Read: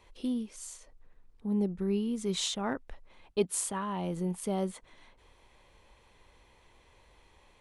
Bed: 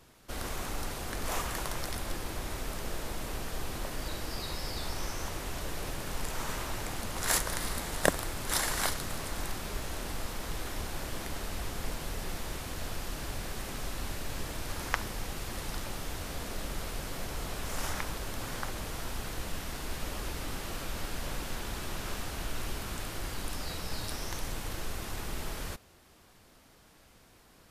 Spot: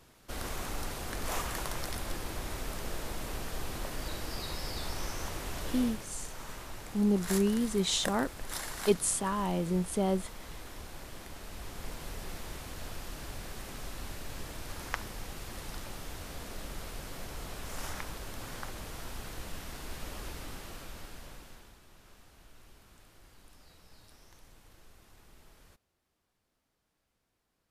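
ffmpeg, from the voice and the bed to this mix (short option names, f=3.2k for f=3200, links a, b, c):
-filter_complex "[0:a]adelay=5500,volume=2.5dB[a];[1:a]volume=3dB,afade=t=out:st=5.8:d=0.26:silence=0.421697,afade=t=in:st=11.37:d=0.7:silence=0.630957,afade=t=out:st=20.27:d=1.52:silence=0.149624[b];[a][b]amix=inputs=2:normalize=0"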